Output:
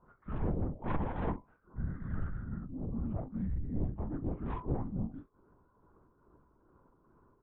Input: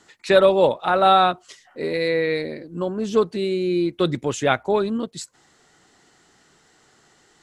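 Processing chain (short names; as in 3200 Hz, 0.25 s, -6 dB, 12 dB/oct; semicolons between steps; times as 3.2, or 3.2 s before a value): short-time reversal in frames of 59 ms; elliptic low-pass 1600 Hz, stop band 80 dB; low shelf 120 Hz +9 dB; notch 1200 Hz, Q 21; in parallel at -0.5 dB: compressor, threshold -31 dBFS, peak gain reduction 17 dB; on the sum: resonator 110 Hz, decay 0.27 s, harmonics odd, mix 60%; frequency shift -430 Hz; soft clip -26.5 dBFS, distortion -9 dB; tremolo triangle 2.4 Hz, depth 60%; hard clip -28 dBFS, distortion -31 dB; doubler 37 ms -9 dB; LPC vocoder at 8 kHz whisper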